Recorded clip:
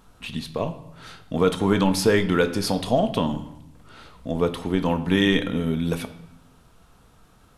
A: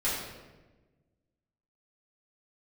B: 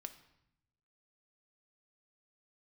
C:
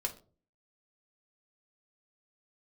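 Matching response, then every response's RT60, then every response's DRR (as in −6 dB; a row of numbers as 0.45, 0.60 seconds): B; 1.2, 0.80, 0.40 seconds; −11.0, 8.0, 2.0 decibels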